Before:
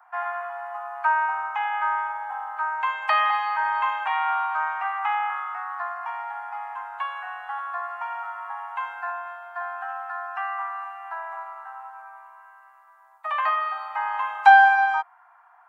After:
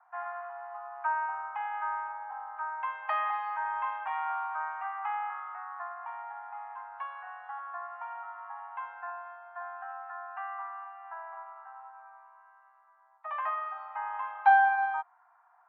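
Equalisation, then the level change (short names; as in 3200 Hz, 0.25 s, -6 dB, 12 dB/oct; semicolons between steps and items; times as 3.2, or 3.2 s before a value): air absorption 310 m; high shelf 3300 Hz -12 dB; -6.0 dB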